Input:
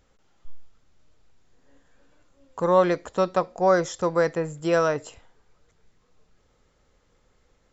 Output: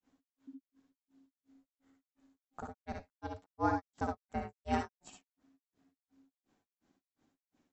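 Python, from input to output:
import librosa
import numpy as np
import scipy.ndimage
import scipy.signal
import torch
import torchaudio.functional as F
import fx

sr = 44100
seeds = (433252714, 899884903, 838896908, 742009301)

y = fx.granulator(x, sr, seeds[0], grain_ms=180.0, per_s=2.8, spray_ms=28.0, spread_st=0)
y = fx.room_early_taps(y, sr, ms=(59, 70), db=(-5.0, -7.0))
y = y * np.sin(2.0 * np.pi * 270.0 * np.arange(len(y)) / sr)
y = y * 10.0 ** (-7.5 / 20.0)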